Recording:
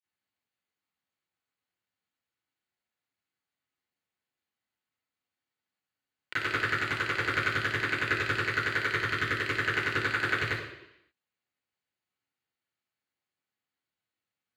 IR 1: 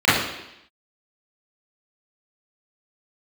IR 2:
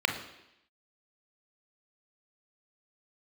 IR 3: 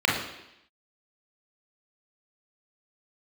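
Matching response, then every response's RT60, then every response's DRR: 1; 0.85, 0.85, 0.85 s; -14.0, 4.0, -4.0 dB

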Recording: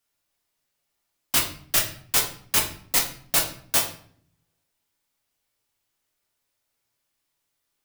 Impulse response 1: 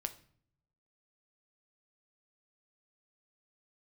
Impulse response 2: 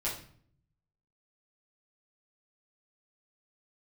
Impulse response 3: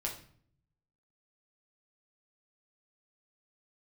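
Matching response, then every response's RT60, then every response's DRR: 3; 0.55, 0.55, 0.55 s; 8.5, -7.5, -1.5 dB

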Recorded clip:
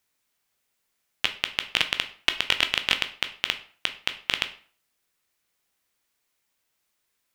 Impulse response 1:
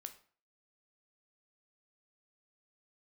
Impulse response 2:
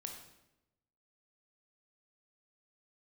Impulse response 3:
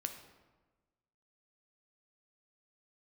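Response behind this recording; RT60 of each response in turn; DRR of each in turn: 1; 0.45, 0.90, 1.3 s; 7.5, 2.0, 5.5 dB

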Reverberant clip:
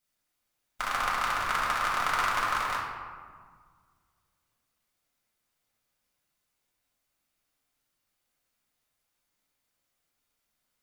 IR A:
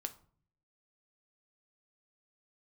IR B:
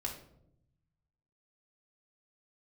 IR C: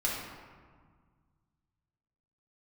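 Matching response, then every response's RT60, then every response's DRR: C; 0.50, 0.75, 1.7 s; 7.5, -1.5, -6.0 dB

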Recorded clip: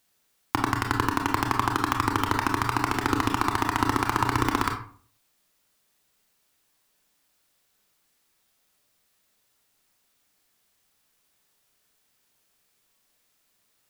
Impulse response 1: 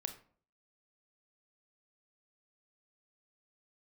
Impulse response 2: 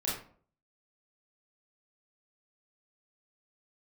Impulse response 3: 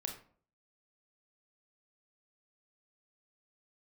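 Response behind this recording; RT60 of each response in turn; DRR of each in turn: 3; 0.50, 0.50, 0.50 s; 7.5, -6.5, 3.0 dB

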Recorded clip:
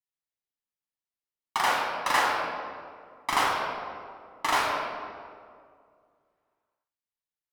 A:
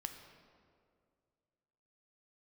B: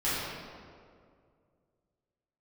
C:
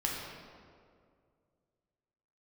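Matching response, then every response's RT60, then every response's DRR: C; 2.2, 2.2, 2.2 s; 5.0, -13.0, -3.5 dB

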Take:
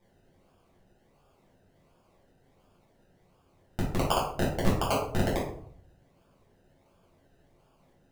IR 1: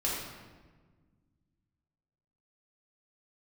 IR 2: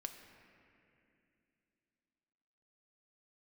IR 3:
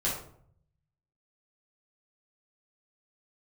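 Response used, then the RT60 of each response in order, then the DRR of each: 3; 1.4, 2.7, 0.60 s; -6.0, 5.0, -7.0 dB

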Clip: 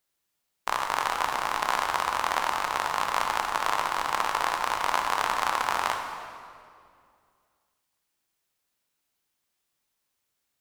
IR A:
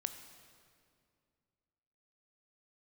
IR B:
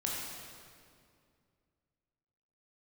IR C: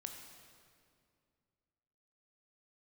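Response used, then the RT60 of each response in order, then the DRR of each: C; 2.3, 2.3, 2.3 s; 8.0, -4.0, 3.5 dB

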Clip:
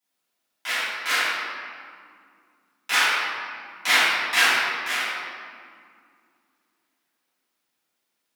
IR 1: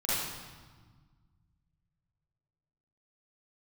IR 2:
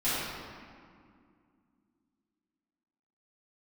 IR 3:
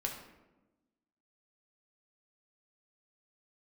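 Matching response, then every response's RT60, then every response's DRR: 2; 1.5, 2.2, 1.1 s; -11.0, -14.5, 0.0 dB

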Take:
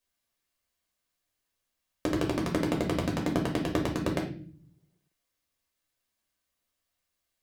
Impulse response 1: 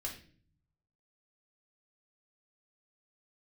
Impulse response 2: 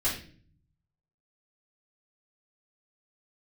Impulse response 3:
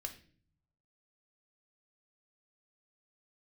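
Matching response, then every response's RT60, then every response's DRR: 1; 0.45, 0.45, 0.45 s; -1.5, -9.0, 4.5 dB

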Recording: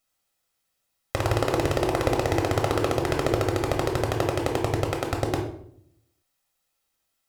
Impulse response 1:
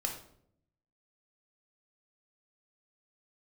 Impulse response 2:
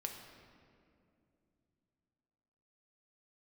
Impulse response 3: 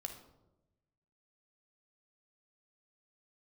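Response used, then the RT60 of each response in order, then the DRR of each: 1; 0.65, 2.6, 1.0 s; 1.5, 2.5, 4.5 dB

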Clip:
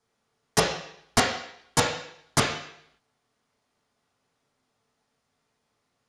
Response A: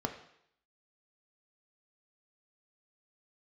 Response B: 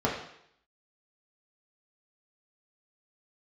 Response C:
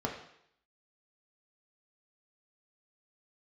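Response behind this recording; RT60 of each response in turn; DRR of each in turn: B; 0.70, 0.70, 0.70 s; 4.5, -4.5, 0.0 dB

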